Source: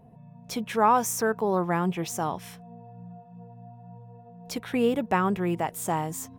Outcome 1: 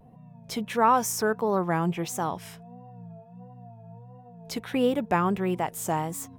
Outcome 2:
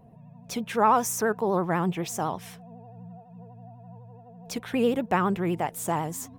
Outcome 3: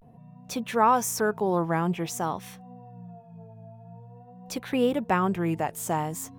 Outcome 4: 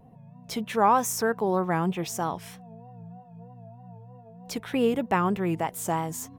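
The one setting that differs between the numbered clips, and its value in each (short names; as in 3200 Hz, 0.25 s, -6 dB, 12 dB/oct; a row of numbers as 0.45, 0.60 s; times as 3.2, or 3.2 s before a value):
vibrato, rate: 1.5, 12, 0.49, 3.2 Hz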